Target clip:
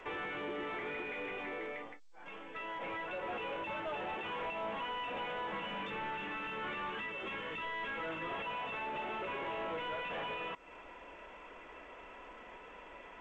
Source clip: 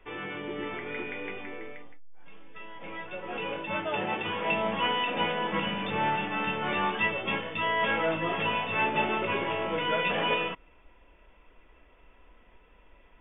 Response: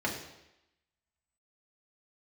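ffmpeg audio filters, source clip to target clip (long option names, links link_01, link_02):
-filter_complex "[0:a]asettb=1/sr,asplit=3[link_01][link_02][link_03];[link_01]atrim=end=5.834[link_04];[link_02]atrim=start=5.83:end=8.31,asetpts=PTS-STARTPTS,afade=type=in:duration=0.004:curve=qsin,afade=type=out:start_time=2.476:duration=0.004:curve=qsin,equalizer=frequency=710:width_type=o:width=0.61:gain=-10.5[link_05];[link_03]atrim=start=8.306[link_06];[link_04][link_05]acrossfade=duration=0.004:curve1=hsin:curve2=qsin[link_07];[link_07][link_06]acrossfade=duration=0.004:curve1=qsin:curve2=hsin,acompressor=threshold=-42dB:ratio=6,asplit=2[link_08][link_09];[link_09]highpass=frequency=720:poles=1,volume=27dB,asoftclip=type=tanh:threshold=-23dB[link_10];[link_08][link_10]amix=inputs=2:normalize=0,lowpass=frequency=1500:poles=1,volume=-6dB,aresample=8000,aresample=44100,volume=-6dB" -ar 16000 -c:a g722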